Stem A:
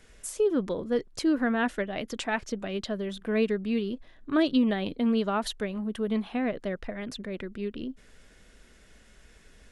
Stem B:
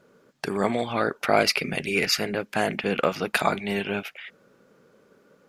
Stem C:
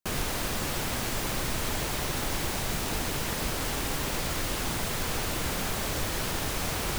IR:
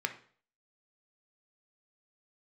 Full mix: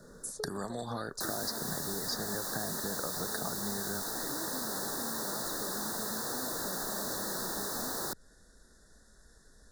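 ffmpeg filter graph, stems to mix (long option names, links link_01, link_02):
-filter_complex "[0:a]acompressor=threshold=-32dB:ratio=6,volume=-4.5dB[link_01];[1:a]bass=frequency=250:gain=6,treble=frequency=4000:gain=-1,acompressor=threshold=-26dB:ratio=6,volume=2.5dB[link_02];[2:a]highpass=250,adelay=1150,volume=0.5dB[link_03];[link_01][link_02][link_03]amix=inputs=3:normalize=0,highshelf=frequency=5100:gain=6.5,acrossover=split=82|580|3400[link_04][link_05][link_06][link_07];[link_04]acompressor=threshold=-53dB:ratio=4[link_08];[link_05]acompressor=threshold=-41dB:ratio=4[link_09];[link_06]acompressor=threshold=-40dB:ratio=4[link_10];[link_07]acompressor=threshold=-37dB:ratio=4[link_11];[link_08][link_09][link_10][link_11]amix=inputs=4:normalize=0,asuperstop=centerf=2600:order=12:qfactor=1.4"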